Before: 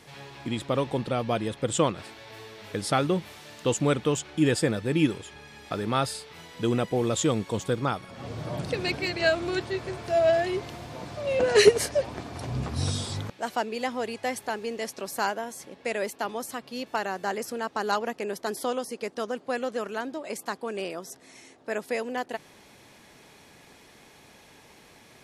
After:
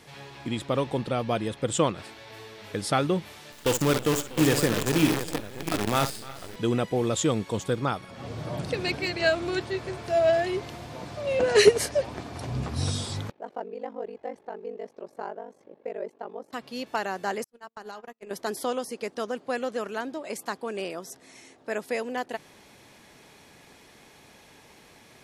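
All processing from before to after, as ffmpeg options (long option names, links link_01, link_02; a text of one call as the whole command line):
ffmpeg -i in.wav -filter_complex "[0:a]asettb=1/sr,asplit=3[link_01][link_02][link_03];[link_01]atrim=end=3.524[link_04];[link_02]atrim=start=3.52:end=6.56,asetpts=PTS-STARTPTS,afade=type=in:duration=0.004:curve=qsin,afade=type=out:start_time=3.036:duration=0.004:curve=qsin,aecho=1:1:58|299|344|644|705:0.355|0.178|0.133|0.168|0.355,atrim=end_sample=134064,acrusher=bits=5:dc=4:mix=0:aa=0.000001[link_05];[link_03]atrim=start=6.556[link_06];[link_04][link_05]acrossfade=duration=0.004:curve1=hsin:curve2=qsin[link_07];[link_07][link_06]acrossfade=duration=0.004:curve1=qsin:curve2=hsin,asettb=1/sr,asplit=3[link_08][link_09][link_10];[link_08]atrim=end=13.314[link_11];[link_09]atrim=start=13.31:end=16.53,asetpts=PTS-STARTPTS,afade=type=in:duration=0.004:curve=qsin,afade=type=out:start_time=3.216:duration=0.004:curve=qsin,bandpass=frequency=460:width_type=q:width=1.3,aeval=exprs='val(0)*sin(2*PI*24*n/s)':channel_layout=same[link_12];[link_10]atrim=start=16.526[link_13];[link_11][link_12]acrossfade=duration=0.004:curve1=hsin:curve2=qsin[link_14];[link_14][link_13]acrossfade=duration=0.004:curve1=qsin:curve2=hsin,asettb=1/sr,asplit=3[link_15][link_16][link_17];[link_15]atrim=end=17.444[link_18];[link_16]atrim=start=17.44:end=18.31,asetpts=PTS-STARTPTS,afade=type=in:duration=0.004:curve=qsin,afade=type=out:start_time=0.866:duration=0.004:curve=qsin,bandreject=frequency=113.7:width_type=h:width=4,bandreject=frequency=227.4:width_type=h:width=4,bandreject=frequency=341.1:width_type=h:width=4,bandreject=frequency=454.8:width_type=h:width=4,bandreject=frequency=568.5:width_type=h:width=4,bandreject=frequency=682.2:width_type=h:width=4,bandreject=frequency=795.9:width_type=h:width=4,bandreject=frequency=909.6:width_type=h:width=4,bandreject=frequency=1023.3:width_type=h:width=4,bandreject=frequency=1137:width_type=h:width=4,bandreject=frequency=1250.7:width_type=h:width=4,bandreject=frequency=1364.4:width_type=h:width=4,bandreject=frequency=1478.1:width_type=h:width=4,bandreject=frequency=1591.8:width_type=h:width=4,bandreject=frequency=1705.5:width_type=h:width=4,bandreject=frequency=1819.2:width_type=h:width=4,bandreject=frequency=1932.9:width_type=h:width=4,bandreject=frequency=2046.6:width_type=h:width=4,bandreject=frequency=2160.3:width_type=h:width=4,bandreject=frequency=2274:width_type=h:width=4,bandreject=frequency=2387.7:width_type=h:width=4,bandreject=frequency=2501.4:width_type=h:width=4,bandreject=frequency=2615.1:width_type=h:width=4,bandreject=frequency=2728.8:width_type=h:width=4,bandreject=frequency=2842.5:width_type=h:width=4,bandreject=frequency=2956.2:width_type=h:width=4,bandreject=frequency=3069.9:width_type=h:width=4,bandreject=frequency=3183.6:width_type=h:width=4,bandreject=frequency=3297.3:width_type=h:width=4,bandreject=frequency=3411:width_type=h:width=4,bandreject=frequency=3524.7:width_type=h:width=4,bandreject=frequency=3638.4:width_type=h:width=4,bandreject=frequency=3752.1:width_type=h:width=4,agate=range=-45dB:threshold=-30dB:ratio=16:release=100:detection=peak,acompressor=threshold=-36dB:ratio=8:attack=3.2:release=140:knee=1:detection=peak[link_19];[link_17]atrim=start=18.306[link_20];[link_18][link_19]acrossfade=duration=0.004:curve1=hsin:curve2=qsin[link_21];[link_21][link_20]acrossfade=duration=0.004:curve1=qsin:curve2=hsin" out.wav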